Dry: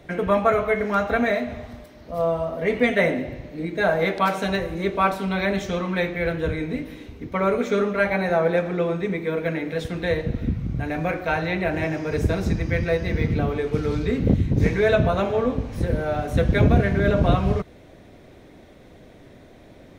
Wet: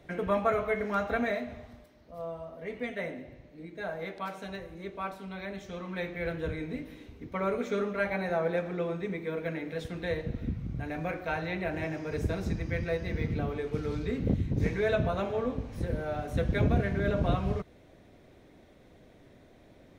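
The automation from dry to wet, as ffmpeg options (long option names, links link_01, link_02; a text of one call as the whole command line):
ffmpeg -i in.wav -af "volume=-1dB,afade=type=out:start_time=1.14:duration=1.03:silence=0.398107,afade=type=in:start_time=5.63:duration=0.66:silence=0.446684" out.wav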